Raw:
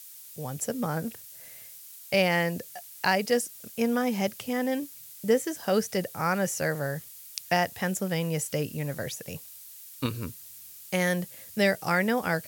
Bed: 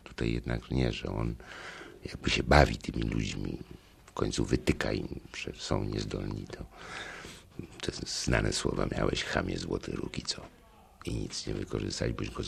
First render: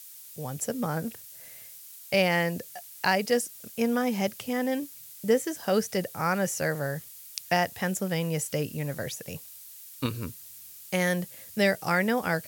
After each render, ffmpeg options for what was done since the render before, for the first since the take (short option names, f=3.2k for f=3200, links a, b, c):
-af anull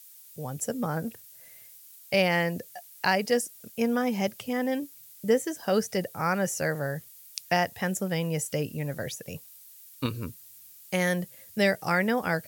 -af "afftdn=nr=6:nf=-47"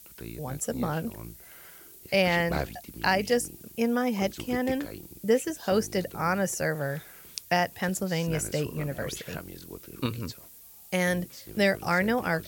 -filter_complex "[1:a]volume=-10dB[a];[0:a][a]amix=inputs=2:normalize=0"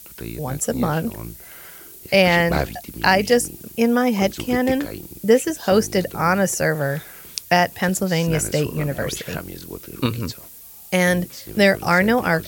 -af "volume=8.5dB"